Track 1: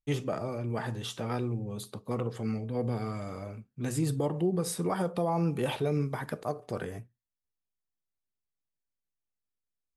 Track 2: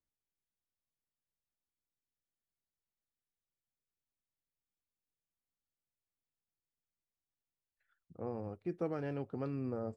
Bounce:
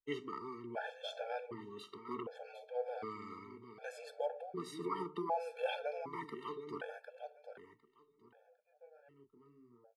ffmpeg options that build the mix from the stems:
ffmpeg -i stem1.wav -i stem2.wav -filter_complex "[0:a]equalizer=frequency=120:width_type=o:width=1.6:gain=-11,volume=-2dB,asplit=2[link_01][link_02];[link_02]volume=-10dB[link_03];[1:a]flanger=delay=22.5:depth=7.3:speed=0.39,volume=-16dB[link_04];[link_03]aecho=0:1:754|1508|2262:1|0.21|0.0441[link_05];[link_01][link_04][link_05]amix=inputs=3:normalize=0,acrossover=split=280 4200:gain=0.251 1 0.1[link_06][link_07][link_08];[link_06][link_07][link_08]amix=inputs=3:normalize=0,afftfilt=real='re*gt(sin(2*PI*0.66*pts/sr)*(1-2*mod(floor(b*sr/1024/450),2)),0)':imag='im*gt(sin(2*PI*0.66*pts/sr)*(1-2*mod(floor(b*sr/1024/450),2)),0)':win_size=1024:overlap=0.75" out.wav

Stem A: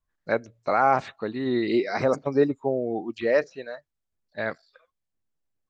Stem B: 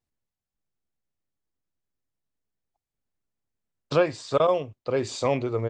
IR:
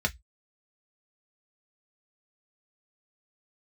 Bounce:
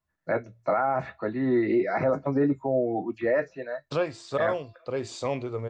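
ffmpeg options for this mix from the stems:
-filter_complex "[0:a]highpass=100,acrossover=split=2600[link_01][link_02];[link_02]acompressor=threshold=-56dB:ratio=4:attack=1:release=60[link_03];[link_01][link_03]amix=inputs=2:normalize=0,volume=-3.5dB,asplit=2[link_04][link_05];[link_05]volume=-5dB[link_06];[1:a]bandreject=frequency=340.1:width_type=h:width=4,bandreject=frequency=680.2:width_type=h:width=4,bandreject=frequency=1020.3:width_type=h:width=4,bandreject=frequency=1360.4:width_type=h:width=4,bandreject=frequency=1700.5:width_type=h:width=4,bandreject=frequency=2040.6:width_type=h:width=4,bandreject=frequency=2380.7:width_type=h:width=4,bandreject=frequency=2720.8:width_type=h:width=4,bandreject=frequency=3060.9:width_type=h:width=4,bandreject=frequency=3401:width_type=h:width=4,bandreject=frequency=3741.1:width_type=h:width=4,bandreject=frequency=4081.2:width_type=h:width=4,bandreject=frequency=4421.3:width_type=h:width=4,bandreject=frequency=4761.4:width_type=h:width=4,bandreject=frequency=5101.5:width_type=h:width=4,bandreject=frequency=5441.6:width_type=h:width=4,bandreject=frequency=5781.7:width_type=h:width=4,bandreject=frequency=6121.8:width_type=h:width=4,volume=-5dB[link_07];[2:a]atrim=start_sample=2205[link_08];[link_06][link_08]afir=irnorm=-1:irlink=0[link_09];[link_04][link_07][link_09]amix=inputs=3:normalize=0,alimiter=limit=-16dB:level=0:latency=1:release=30"

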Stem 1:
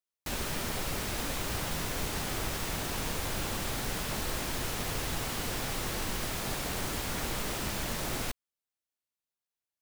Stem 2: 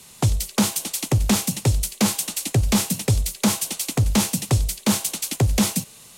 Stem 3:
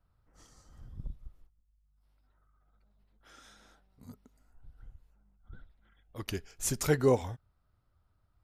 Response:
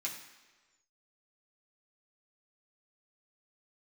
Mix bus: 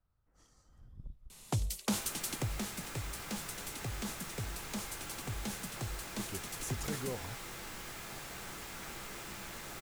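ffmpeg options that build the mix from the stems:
-filter_complex "[0:a]equalizer=frequency=1400:width=1.2:gain=4,adelay=1650,volume=-14dB,asplit=2[link_01][link_02];[link_02]volume=-4.5dB[link_03];[1:a]acompressor=threshold=-28dB:ratio=1.5,adelay=1300,volume=-9dB,afade=type=out:start_time=2.19:duration=0.48:silence=0.398107[link_04];[2:a]alimiter=level_in=1dB:limit=-24dB:level=0:latency=1,volume=-1dB,volume=-7dB[link_05];[3:a]atrim=start_sample=2205[link_06];[link_03][link_06]afir=irnorm=-1:irlink=0[link_07];[link_01][link_04][link_05][link_07]amix=inputs=4:normalize=0"

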